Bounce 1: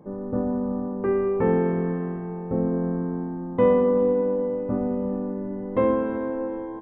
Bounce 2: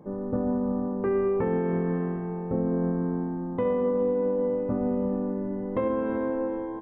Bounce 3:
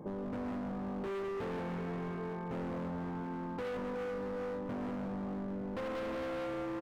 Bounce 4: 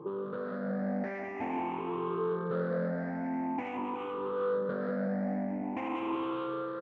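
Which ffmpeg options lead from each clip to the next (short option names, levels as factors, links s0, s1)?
-af "alimiter=limit=0.126:level=0:latency=1:release=123"
-af "aecho=1:1:185|370|555|740|925|1110:0.501|0.261|0.136|0.0705|0.0366|0.0191,asoftclip=type=hard:threshold=0.0282,acompressor=threshold=0.01:ratio=6,volume=1.26"
-af "afftfilt=real='re*pow(10,19/40*sin(2*PI*(0.65*log(max(b,1)*sr/1024/100)/log(2)-(0.47)*(pts-256)/sr)))':imag='im*pow(10,19/40*sin(2*PI*(0.65*log(max(b,1)*sr/1024/100)/log(2)-(0.47)*(pts-256)/sr)))':win_size=1024:overlap=0.75,highpass=210,lowpass=2300,dynaudnorm=f=130:g=9:m=1.41"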